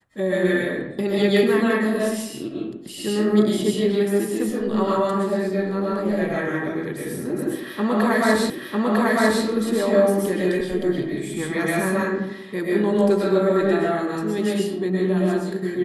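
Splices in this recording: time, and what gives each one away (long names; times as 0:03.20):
0:08.50: the same again, the last 0.95 s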